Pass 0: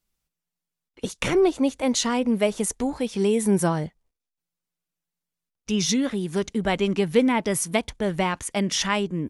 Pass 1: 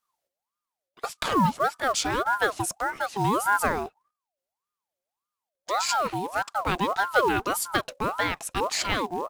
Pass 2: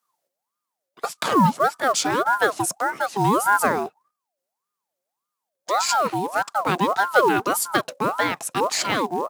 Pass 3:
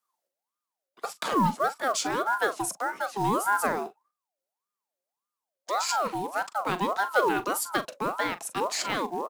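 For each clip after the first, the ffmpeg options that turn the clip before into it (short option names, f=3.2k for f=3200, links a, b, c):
-af "acrusher=bits=6:mode=log:mix=0:aa=0.000001,aeval=exprs='val(0)*sin(2*PI*880*n/s+880*0.4/1.7*sin(2*PI*1.7*n/s))':c=same"
-af "highpass=f=130:w=0.5412,highpass=f=130:w=1.3066,equalizer=f=2.8k:w=0.9:g=-4,volume=5.5dB"
-filter_complex "[0:a]acrossover=split=150|930|2800[a][b][c][d];[a]acrusher=bits=4:dc=4:mix=0:aa=0.000001[e];[e][b][c][d]amix=inputs=4:normalize=0,asplit=2[f][g];[g]adelay=41,volume=-13.5dB[h];[f][h]amix=inputs=2:normalize=0,volume=-6.5dB"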